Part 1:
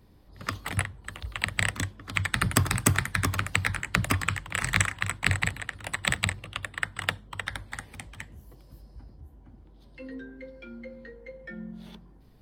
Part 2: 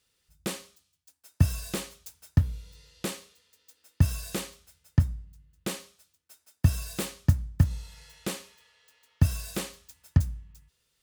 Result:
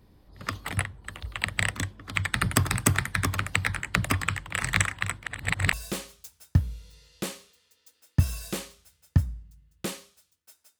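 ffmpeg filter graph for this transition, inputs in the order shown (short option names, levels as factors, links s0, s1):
-filter_complex "[0:a]apad=whole_dur=10.79,atrim=end=10.79,asplit=2[s0][s1];[s0]atrim=end=5.232[s2];[s1]atrim=start=5.228:end=5.732,asetpts=PTS-STARTPTS,areverse[s3];[1:a]atrim=start=1.548:end=6.61[s4];[s2][s3]acrossfade=d=0.004:c1=hsin:c2=hsin[s5];[s5][s4]acrossfade=d=0.004:c1=hsin:c2=hsin"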